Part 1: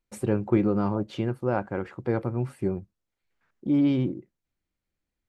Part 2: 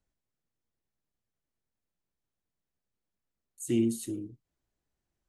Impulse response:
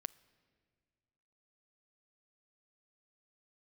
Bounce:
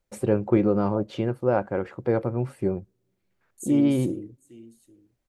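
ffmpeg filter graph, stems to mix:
-filter_complex "[0:a]volume=0dB,asplit=3[a][b][c];[b]volume=-21.5dB[d];[1:a]volume=1.5dB,asplit=2[e][f];[f]volume=-23dB[g];[c]apad=whole_len=233189[h];[e][h]sidechaincompress=threshold=-26dB:ratio=8:attack=8.5:release=367[i];[2:a]atrim=start_sample=2205[j];[d][j]afir=irnorm=-1:irlink=0[k];[g]aecho=0:1:804:1[l];[a][i][k][l]amix=inputs=4:normalize=0,equalizer=f=540:t=o:w=0.77:g=6"

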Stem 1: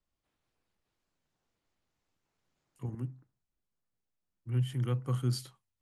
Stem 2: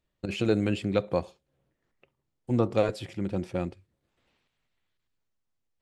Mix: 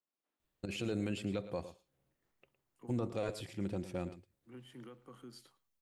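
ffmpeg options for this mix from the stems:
-filter_complex "[0:a]highpass=f=220:w=0.5412,highpass=f=220:w=1.3066,highshelf=f=3.5k:g=-7.5,alimiter=level_in=12dB:limit=-24dB:level=0:latency=1:release=232,volume=-12dB,volume=-6.5dB,asplit=2[a][b];[b]volume=-21dB[c];[1:a]highshelf=f=7.9k:g=12,alimiter=limit=-17dB:level=0:latency=1:release=16,adelay=400,volume=-6dB,asplit=2[d][e];[e]volume=-14.5dB[f];[c][f]amix=inputs=2:normalize=0,aecho=0:1:111:1[g];[a][d][g]amix=inputs=3:normalize=0,alimiter=level_in=2dB:limit=-24dB:level=0:latency=1:release=453,volume=-2dB"

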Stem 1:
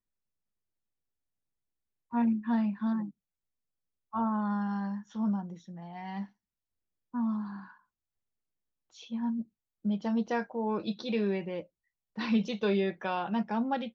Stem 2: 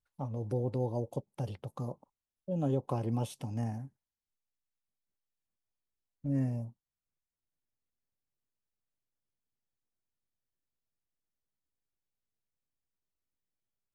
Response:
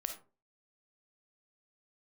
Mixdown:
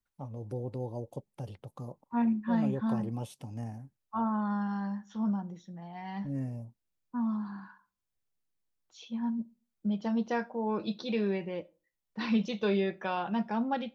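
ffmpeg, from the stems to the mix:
-filter_complex "[0:a]volume=-2dB,asplit=2[a][b];[b]volume=-13dB[c];[1:a]volume=-4dB[d];[2:a]atrim=start_sample=2205[e];[c][e]afir=irnorm=-1:irlink=0[f];[a][d][f]amix=inputs=3:normalize=0"

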